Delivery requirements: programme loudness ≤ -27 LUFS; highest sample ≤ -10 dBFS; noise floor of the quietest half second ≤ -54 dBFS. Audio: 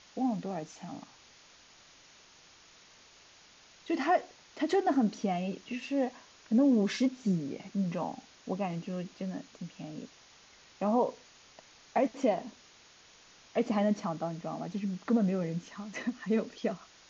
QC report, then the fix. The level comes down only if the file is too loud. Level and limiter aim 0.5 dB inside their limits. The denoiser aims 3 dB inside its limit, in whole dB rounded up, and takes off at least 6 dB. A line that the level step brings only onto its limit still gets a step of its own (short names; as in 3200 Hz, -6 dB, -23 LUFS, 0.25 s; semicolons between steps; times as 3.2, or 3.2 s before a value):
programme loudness -32.0 LUFS: OK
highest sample -15.5 dBFS: OK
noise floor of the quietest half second -58 dBFS: OK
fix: none